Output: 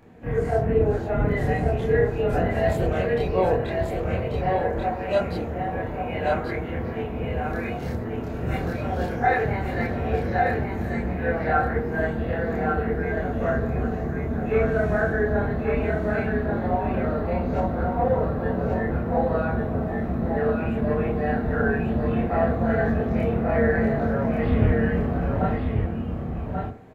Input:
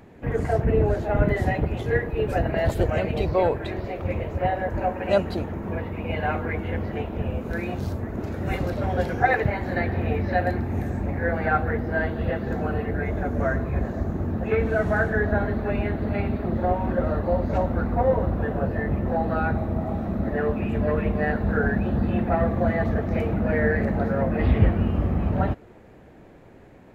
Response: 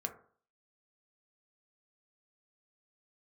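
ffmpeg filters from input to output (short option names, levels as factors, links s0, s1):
-filter_complex "[0:a]aecho=1:1:1137:0.596,asplit=2[s0][s1];[1:a]atrim=start_sample=2205,adelay=27[s2];[s1][s2]afir=irnorm=-1:irlink=0,volume=1.41[s3];[s0][s3]amix=inputs=2:normalize=0,volume=0.501"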